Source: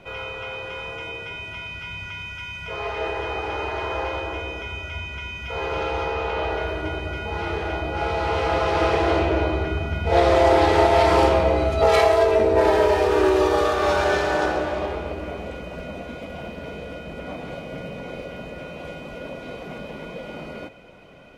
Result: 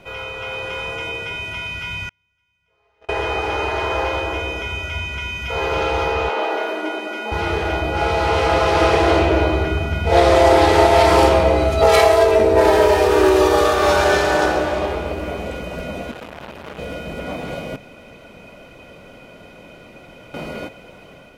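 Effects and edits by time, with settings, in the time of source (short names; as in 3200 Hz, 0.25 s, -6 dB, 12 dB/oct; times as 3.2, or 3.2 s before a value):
2.09–3.09 gate -22 dBFS, range -41 dB
6.29–7.32 rippled Chebyshev high-pass 210 Hz, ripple 3 dB
16.11–16.79 core saturation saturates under 1500 Hz
17.76–20.34 room tone
whole clip: high shelf 7300 Hz +10 dB; AGC gain up to 4 dB; gain +1.5 dB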